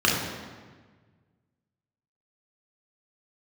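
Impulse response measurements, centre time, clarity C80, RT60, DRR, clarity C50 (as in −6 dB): 70 ms, 4.0 dB, 1.5 s, −4.0 dB, 1.5 dB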